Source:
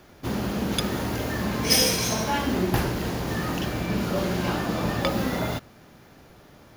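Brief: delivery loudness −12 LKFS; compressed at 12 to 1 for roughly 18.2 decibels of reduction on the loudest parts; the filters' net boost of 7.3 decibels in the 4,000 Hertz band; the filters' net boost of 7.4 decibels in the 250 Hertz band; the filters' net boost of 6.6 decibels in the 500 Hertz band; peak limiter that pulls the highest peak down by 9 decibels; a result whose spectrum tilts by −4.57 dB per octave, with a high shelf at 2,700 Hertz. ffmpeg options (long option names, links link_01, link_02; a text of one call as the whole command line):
ffmpeg -i in.wav -af "equalizer=frequency=250:width_type=o:gain=8,equalizer=frequency=500:width_type=o:gain=5.5,highshelf=frequency=2700:gain=5,equalizer=frequency=4000:width_type=o:gain=5,acompressor=threshold=-28dB:ratio=12,volume=21.5dB,alimiter=limit=-3dB:level=0:latency=1" out.wav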